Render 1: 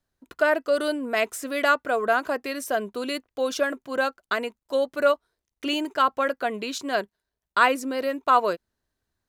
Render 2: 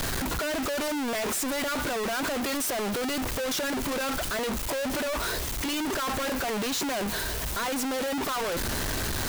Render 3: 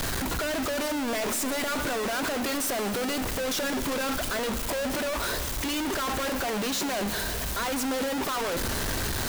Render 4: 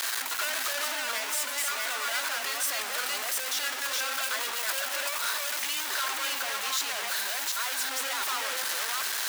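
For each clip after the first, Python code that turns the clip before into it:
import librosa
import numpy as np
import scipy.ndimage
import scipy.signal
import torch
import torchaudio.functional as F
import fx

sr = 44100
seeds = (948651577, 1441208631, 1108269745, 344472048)

y1 = np.sign(x) * np.sqrt(np.mean(np.square(x)))
y1 = y1 * librosa.db_to_amplitude(-3.0)
y2 = fx.rev_schroeder(y1, sr, rt60_s=3.7, comb_ms=30, drr_db=10.5)
y3 = fx.reverse_delay(y2, sr, ms=376, wet_db=-1)
y3 = scipy.signal.sosfilt(scipy.signal.butter(2, 1200.0, 'highpass', fs=sr, output='sos'), y3)
y3 = fx.rider(y3, sr, range_db=10, speed_s=0.5)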